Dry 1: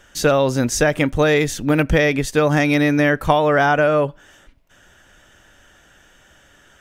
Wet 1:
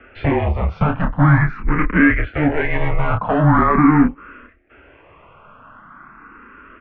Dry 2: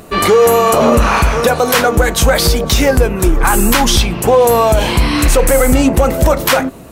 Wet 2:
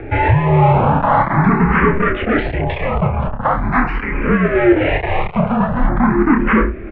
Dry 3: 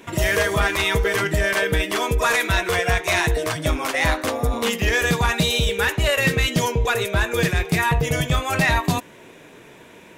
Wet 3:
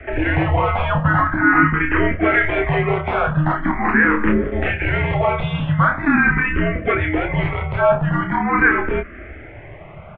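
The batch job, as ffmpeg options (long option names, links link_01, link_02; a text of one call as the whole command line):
ffmpeg -i in.wav -filter_complex "[0:a]asplit=2[link_01][link_02];[link_02]acompressor=threshold=-26dB:ratio=6,volume=-2.5dB[link_03];[link_01][link_03]amix=inputs=2:normalize=0,afreqshift=-41,acontrast=27,asoftclip=type=hard:threshold=-10dB,asplit=2[link_04][link_05];[link_05]adelay=29,volume=-5.5dB[link_06];[link_04][link_06]amix=inputs=2:normalize=0,highpass=frequency=200:width_type=q:width=0.5412,highpass=frequency=200:width_type=q:width=1.307,lowpass=frequency=2500:width_type=q:width=0.5176,lowpass=frequency=2500:width_type=q:width=0.7071,lowpass=frequency=2500:width_type=q:width=1.932,afreqshift=-270,asplit=2[link_07][link_08];[link_08]afreqshift=0.43[link_09];[link_07][link_09]amix=inputs=2:normalize=1,volume=2dB" out.wav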